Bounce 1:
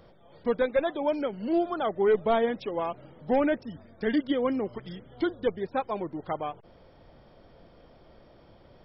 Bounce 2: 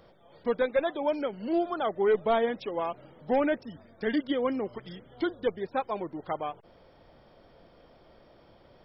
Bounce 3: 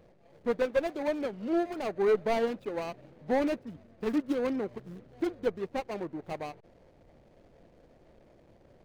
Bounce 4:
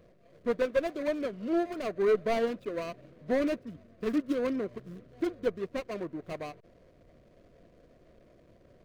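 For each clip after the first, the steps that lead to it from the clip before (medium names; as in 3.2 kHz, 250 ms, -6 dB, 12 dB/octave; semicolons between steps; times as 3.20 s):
bass shelf 250 Hz -5.5 dB
median filter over 41 samples
Butterworth band-stop 840 Hz, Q 4.4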